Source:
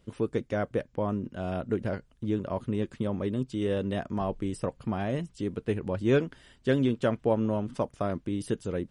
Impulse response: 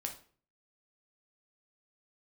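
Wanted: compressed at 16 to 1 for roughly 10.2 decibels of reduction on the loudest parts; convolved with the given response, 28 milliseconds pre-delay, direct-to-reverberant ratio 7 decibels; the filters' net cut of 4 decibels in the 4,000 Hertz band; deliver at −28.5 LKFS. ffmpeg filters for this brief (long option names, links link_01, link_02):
-filter_complex "[0:a]equalizer=frequency=4000:width_type=o:gain=-5.5,acompressor=threshold=-29dB:ratio=16,asplit=2[link_01][link_02];[1:a]atrim=start_sample=2205,adelay=28[link_03];[link_02][link_03]afir=irnorm=-1:irlink=0,volume=-6.5dB[link_04];[link_01][link_04]amix=inputs=2:normalize=0,volume=6.5dB"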